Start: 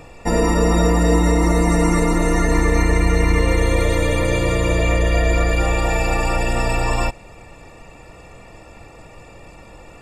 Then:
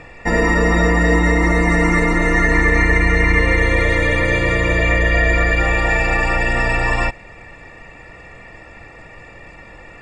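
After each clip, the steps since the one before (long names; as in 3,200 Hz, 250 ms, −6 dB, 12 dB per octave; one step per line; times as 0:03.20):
Bessel low-pass filter 5,200 Hz, order 2
parametric band 1,900 Hz +13 dB 0.57 octaves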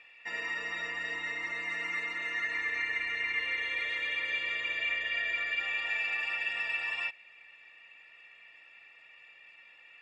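resonant band-pass 2,900 Hz, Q 3.5
level −5 dB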